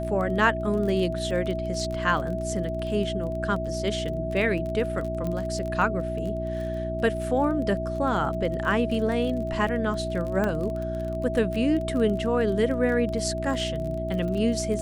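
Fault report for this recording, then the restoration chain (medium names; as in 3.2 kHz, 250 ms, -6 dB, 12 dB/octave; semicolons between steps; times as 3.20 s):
crackle 23 per s -31 dBFS
hum 60 Hz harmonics 6 -32 dBFS
whine 650 Hz -30 dBFS
5.27 s: pop -19 dBFS
10.44 s: pop -15 dBFS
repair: de-click; de-hum 60 Hz, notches 6; band-stop 650 Hz, Q 30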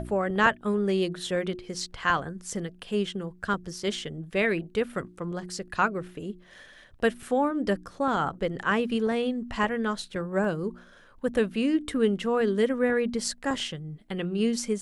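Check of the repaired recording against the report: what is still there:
5.27 s: pop
10.44 s: pop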